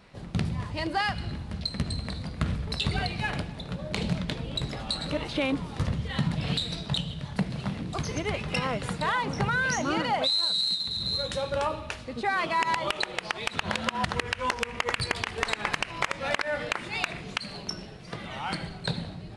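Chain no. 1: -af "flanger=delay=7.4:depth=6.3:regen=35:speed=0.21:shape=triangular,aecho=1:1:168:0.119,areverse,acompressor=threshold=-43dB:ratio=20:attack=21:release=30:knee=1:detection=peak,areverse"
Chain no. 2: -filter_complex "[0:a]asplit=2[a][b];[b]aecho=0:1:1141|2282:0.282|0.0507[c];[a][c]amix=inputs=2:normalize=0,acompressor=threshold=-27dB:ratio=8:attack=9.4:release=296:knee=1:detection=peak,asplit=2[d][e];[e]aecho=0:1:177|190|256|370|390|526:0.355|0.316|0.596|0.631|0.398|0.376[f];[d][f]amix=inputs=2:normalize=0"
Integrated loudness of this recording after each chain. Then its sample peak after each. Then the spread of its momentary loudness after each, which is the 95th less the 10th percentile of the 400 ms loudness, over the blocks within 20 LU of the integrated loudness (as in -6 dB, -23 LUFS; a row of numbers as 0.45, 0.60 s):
-41.5, -28.5 LUFS; -25.5, -13.5 dBFS; 4, 5 LU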